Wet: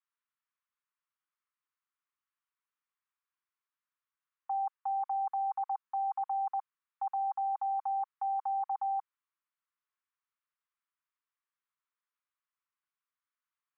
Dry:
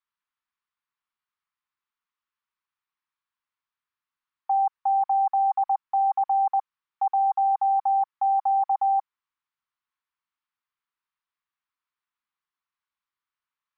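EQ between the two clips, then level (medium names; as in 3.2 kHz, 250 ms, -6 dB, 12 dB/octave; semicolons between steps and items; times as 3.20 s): high-pass 960 Hz 24 dB/octave; distance through air 300 m; -1.5 dB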